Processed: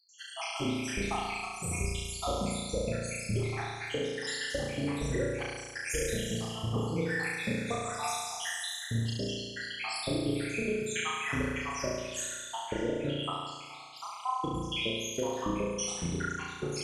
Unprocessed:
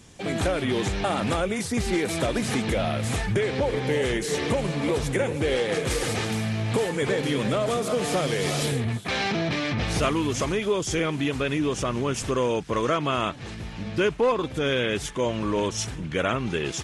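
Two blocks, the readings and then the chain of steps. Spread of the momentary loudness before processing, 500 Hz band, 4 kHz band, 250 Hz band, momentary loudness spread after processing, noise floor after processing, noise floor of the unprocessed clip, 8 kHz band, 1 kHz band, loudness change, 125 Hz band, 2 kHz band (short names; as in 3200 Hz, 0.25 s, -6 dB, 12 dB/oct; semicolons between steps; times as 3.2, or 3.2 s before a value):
3 LU, -10.5 dB, -5.5 dB, -8.5 dB, 5 LU, -45 dBFS, -36 dBFS, -3.5 dB, -7.0 dB, -8.0 dB, -7.5 dB, -6.0 dB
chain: random spectral dropouts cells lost 84%; compressor, threshold -32 dBFS, peak gain reduction 12 dB; flutter echo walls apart 6 m, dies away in 1.4 s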